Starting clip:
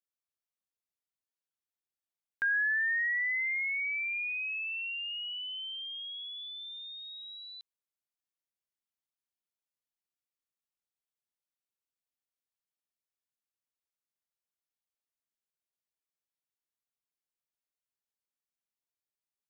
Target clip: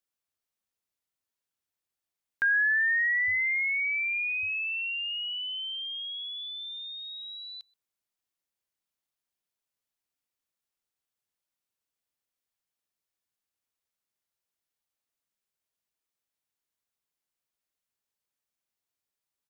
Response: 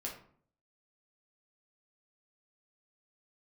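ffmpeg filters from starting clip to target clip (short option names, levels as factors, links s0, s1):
-filter_complex "[0:a]asetnsamples=n=441:p=0,asendcmd='3.28 equalizer g 12;4.43 equalizer g 4.5',equalizer=f=93:t=o:w=0.2:g=6,asplit=2[s0][s1];[s1]adelay=128.3,volume=0.0447,highshelf=f=4000:g=-2.89[s2];[s0][s2]amix=inputs=2:normalize=0,volume=1.68"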